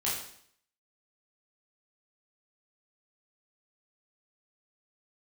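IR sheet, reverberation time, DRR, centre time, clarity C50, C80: 0.65 s, -7.5 dB, 50 ms, 3.0 dB, 6.5 dB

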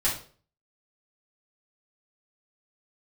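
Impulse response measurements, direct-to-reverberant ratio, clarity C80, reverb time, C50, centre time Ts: -8.0 dB, 12.0 dB, 0.45 s, 6.5 dB, 28 ms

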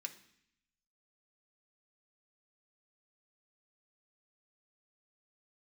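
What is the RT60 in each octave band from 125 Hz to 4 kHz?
1.1, 0.90, 0.65, 0.70, 0.85, 0.80 s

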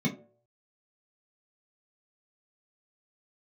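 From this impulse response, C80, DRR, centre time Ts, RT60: 16.0 dB, -3.5 dB, 16 ms, 0.55 s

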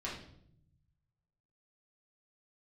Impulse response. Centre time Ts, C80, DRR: 37 ms, 9.0 dB, -7.0 dB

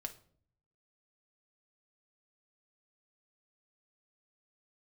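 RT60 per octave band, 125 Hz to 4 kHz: 1.0, 0.80, 0.60, 0.45, 0.40, 0.35 s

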